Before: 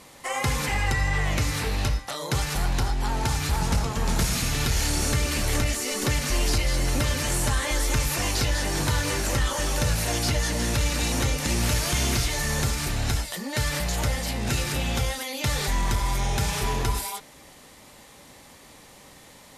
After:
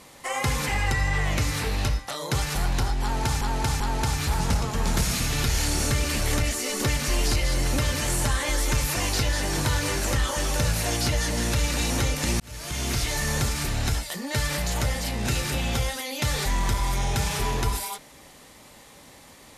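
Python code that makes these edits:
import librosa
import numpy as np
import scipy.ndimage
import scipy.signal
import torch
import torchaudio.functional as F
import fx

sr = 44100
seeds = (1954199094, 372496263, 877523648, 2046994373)

y = fx.edit(x, sr, fx.repeat(start_s=3.02, length_s=0.39, count=3),
    fx.fade_in_span(start_s=11.62, length_s=0.7), tone=tone)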